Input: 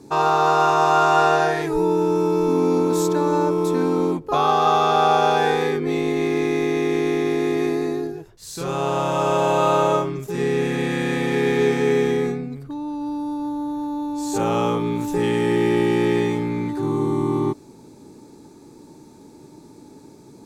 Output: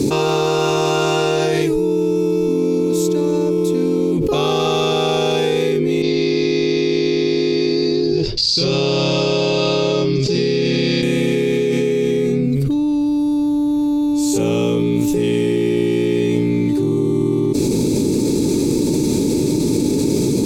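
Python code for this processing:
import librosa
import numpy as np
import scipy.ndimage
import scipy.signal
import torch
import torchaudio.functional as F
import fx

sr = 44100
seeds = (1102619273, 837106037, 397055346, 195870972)

y = fx.ladder_lowpass(x, sr, hz=4900.0, resonance_pct=85, at=(6.02, 11.03))
y = fx.band_shelf(y, sr, hz=1100.0, db=-14.0, octaves=1.7)
y = fx.env_flatten(y, sr, amount_pct=100)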